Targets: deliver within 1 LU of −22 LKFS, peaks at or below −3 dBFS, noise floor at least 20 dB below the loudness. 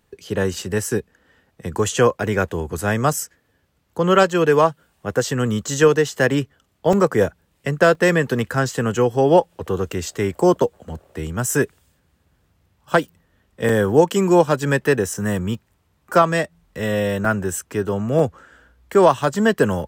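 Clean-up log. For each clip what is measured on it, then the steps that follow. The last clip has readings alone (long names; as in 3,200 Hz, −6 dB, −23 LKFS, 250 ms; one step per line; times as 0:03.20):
number of dropouts 8; longest dropout 2.9 ms; integrated loudness −19.5 LKFS; sample peak −3.0 dBFS; target loudness −22.0 LKFS
→ repair the gap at 0:00.54/0:03.13/0:06.93/0:07.95/0:13.69/0:15.14/0:17.25/0:18.19, 2.9 ms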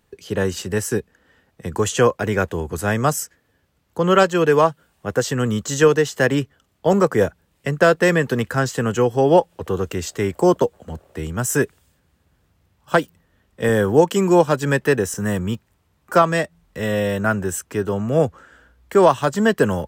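number of dropouts 0; integrated loudness −19.5 LKFS; sample peak −3.0 dBFS; target loudness −22.0 LKFS
→ level −2.5 dB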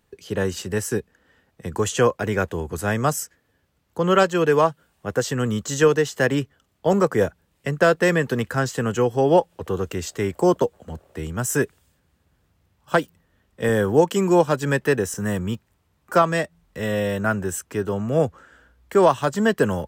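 integrated loudness −22.0 LKFS; sample peak −5.5 dBFS; background noise floor −68 dBFS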